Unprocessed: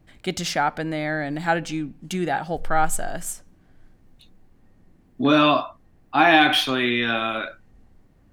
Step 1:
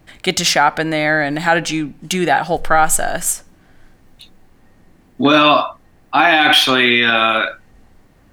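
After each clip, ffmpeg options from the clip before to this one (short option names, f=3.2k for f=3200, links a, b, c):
-af "lowshelf=f=460:g=-8.5,alimiter=level_in=14dB:limit=-1dB:release=50:level=0:latency=1,volume=-1dB"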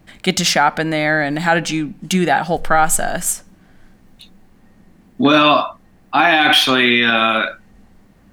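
-af "equalizer=f=200:t=o:w=0.37:g=9.5,volume=-1dB"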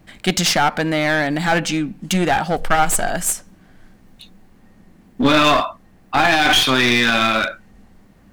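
-af "aeval=exprs='clip(val(0),-1,0.168)':c=same"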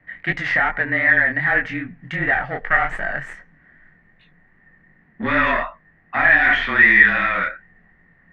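-af "flanger=delay=19.5:depth=6.2:speed=2.6,lowpass=f=1.9k:t=q:w=15,afreqshift=-27,volume=-6dB"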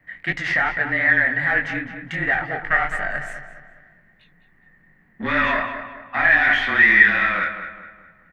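-filter_complex "[0:a]crystalizer=i=2:c=0,asplit=2[a][b];[b]adelay=208,lowpass=f=2.9k:p=1,volume=-9dB,asplit=2[c][d];[d]adelay=208,lowpass=f=2.9k:p=1,volume=0.43,asplit=2[e][f];[f]adelay=208,lowpass=f=2.9k:p=1,volume=0.43,asplit=2[g][h];[h]adelay=208,lowpass=f=2.9k:p=1,volume=0.43,asplit=2[i][j];[j]adelay=208,lowpass=f=2.9k:p=1,volume=0.43[k];[c][e][g][i][k]amix=inputs=5:normalize=0[l];[a][l]amix=inputs=2:normalize=0,volume=-3dB"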